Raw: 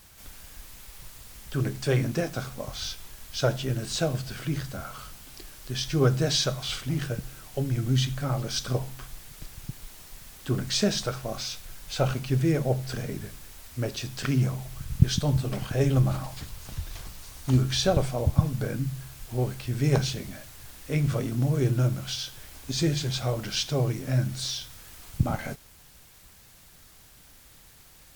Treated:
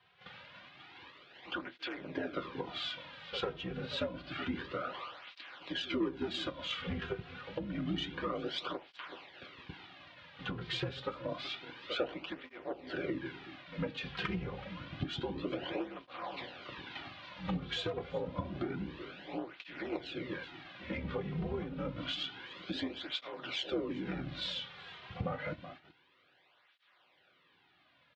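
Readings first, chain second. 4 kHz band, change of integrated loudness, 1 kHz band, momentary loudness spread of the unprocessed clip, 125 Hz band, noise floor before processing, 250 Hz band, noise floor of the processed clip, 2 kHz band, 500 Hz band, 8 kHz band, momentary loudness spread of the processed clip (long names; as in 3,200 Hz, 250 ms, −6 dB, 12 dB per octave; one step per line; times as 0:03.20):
−7.0 dB, −11.5 dB, −5.5 dB, 20 LU, −19.5 dB, −53 dBFS, −9.0 dB, −69 dBFS, −3.5 dB, −9.0 dB, −27.5 dB, 12 LU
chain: sub-octave generator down 2 octaves, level −2 dB
single-sideband voice off tune −76 Hz 180–3,600 Hz
echo ahead of the sound 102 ms −19.5 dB
dynamic equaliser 300 Hz, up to +7 dB, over −43 dBFS, Q 1.2
harmonic generator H 8 −26 dB, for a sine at −6.5 dBFS
low-shelf EQ 400 Hz −7.5 dB
notch comb filter 220 Hz
on a send: single-tap delay 374 ms −22 dB
on the sum: noise gate −57 dBFS, range −11 dB
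downward compressor 6 to 1, threshold −40 dBFS, peak gain reduction 20 dB
through-zero flanger with one copy inverted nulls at 0.28 Hz, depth 3.6 ms
level +8.5 dB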